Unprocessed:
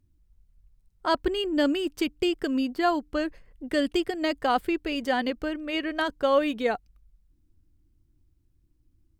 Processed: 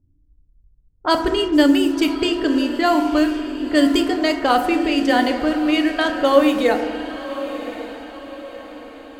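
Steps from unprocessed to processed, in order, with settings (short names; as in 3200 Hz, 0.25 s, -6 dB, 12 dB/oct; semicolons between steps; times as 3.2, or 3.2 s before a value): high shelf 5900 Hz +9.5 dB; FDN reverb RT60 1.4 s, low-frequency decay 1.3×, high-frequency decay 0.35×, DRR 4.5 dB; in parallel at -9 dB: requantised 6-bit, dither none; on the sum: low-pass opened by the level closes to 550 Hz, open at -16.5 dBFS; on a send: diffused feedback echo 1.091 s, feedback 45%, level -12 dB; on the sum: gain +3.5 dB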